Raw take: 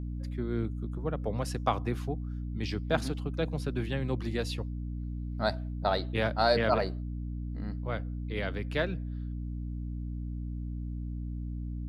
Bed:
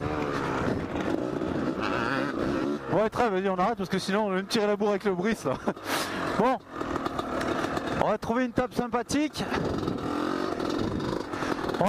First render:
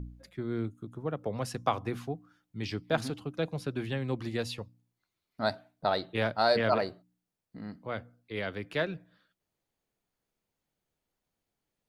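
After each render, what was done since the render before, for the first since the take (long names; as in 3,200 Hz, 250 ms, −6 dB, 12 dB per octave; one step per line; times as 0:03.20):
hum removal 60 Hz, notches 5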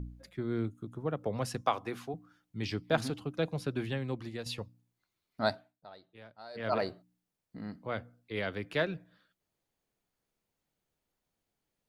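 0:01.61–0:02.14: high-pass filter 370 Hz 6 dB per octave
0:03.78–0:04.46: fade out, to −9.5 dB
0:05.47–0:06.87: duck −23 dB, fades 0.34 s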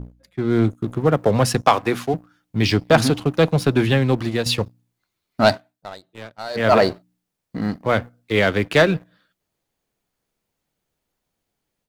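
automatic gain control gain up to 10.5 dB
leveller curve on the samples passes 2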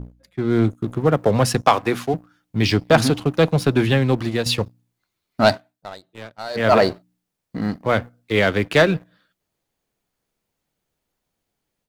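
no processing that can be heard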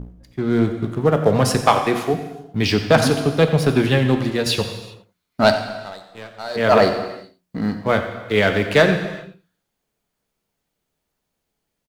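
single-tap delay 89 ms −15 dB
reverb whose tail is shaped and stops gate 430 ms falling, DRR 6.5 dB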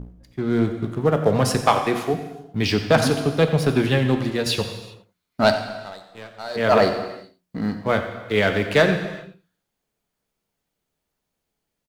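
level −2.5 dB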